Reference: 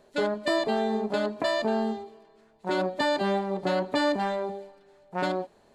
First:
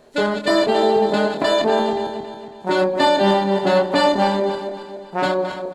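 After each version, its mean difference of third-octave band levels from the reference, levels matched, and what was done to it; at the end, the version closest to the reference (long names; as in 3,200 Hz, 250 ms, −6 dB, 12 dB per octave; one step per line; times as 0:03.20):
5.5 dB: feedback delay that plays each chunk backwards 138 ms, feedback 65%, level −7.5 dB
double-tracking delay 25 ms −5 dB
level +7.5 dB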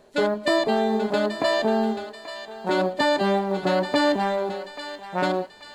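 3.5 dB: floating-point word with a short mantissa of 6 bits
feedback echo with a high-pass in the loop 834 ms, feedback 50%, high-pass 1,100 Hz, level −9.5 dB
level +4.5 dB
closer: second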